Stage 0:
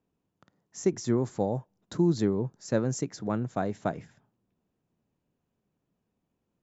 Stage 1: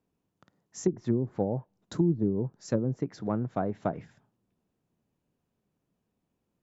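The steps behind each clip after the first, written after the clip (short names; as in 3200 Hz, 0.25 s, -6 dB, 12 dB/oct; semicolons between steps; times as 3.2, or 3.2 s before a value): treble ducked by the level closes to 370 Hz, closed at -21.5 dBFS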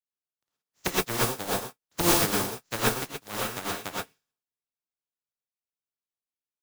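spectral contrast lowered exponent 0.22; non-linear reverb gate 0.15 s rising, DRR -4 dB; upward expander 2.5:1, over -39 dBFS; gain +1.5 dB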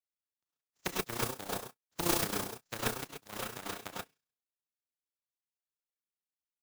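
AM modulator 30 Hz, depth 55%; gain -5.5 dB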